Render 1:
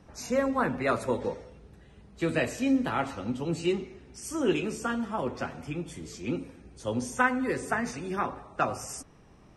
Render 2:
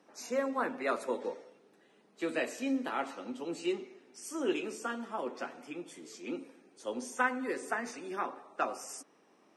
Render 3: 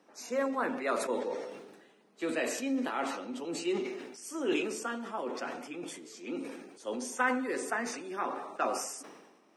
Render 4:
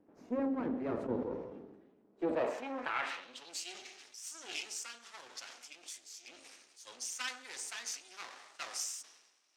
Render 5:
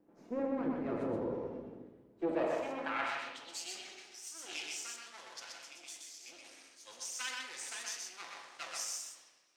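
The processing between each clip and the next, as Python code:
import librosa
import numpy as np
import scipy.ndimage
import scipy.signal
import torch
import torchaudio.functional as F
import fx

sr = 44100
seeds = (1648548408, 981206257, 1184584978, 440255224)

y1 = scipy.signal.sosfilt(scipy.signal.butter(4, 260.0, 'highpass', fs=sr, output='sos'), x)
y1 = F.gain(torch.from_numpy(y1), -5.0).numpy()
y2 = fx.peak_eq(y1, sr, hz=120.0, db=-3.5, octaves=0.77)
y2 = fx.sustainer(y2, sr, db_per_s=47.0)
y3 = np.maximum(y2, 0.0)
y3 = fx.filter_sweep_bandpass(y3, sr, from_hz=260.0, to_hz=5900.0, start_s=2.04, end_s=3.58, q=1.4)
y3 = F.gain(torch.from_numpy(y3), 7.5).numpy()
y4 = y3 + 10.0 ** (-3.0 / 20.0) * np.pad(y3, (int(125 * sr / 1000.0), 0))[:len(y3)]
y4 = fx.room_shoebox(y4, sr, seeds[0], volume_m3=650.0, walls='mixed', distance_m=0.77)
y4 = F.gain(torch.from_numpy(y4), -2.5).numpy()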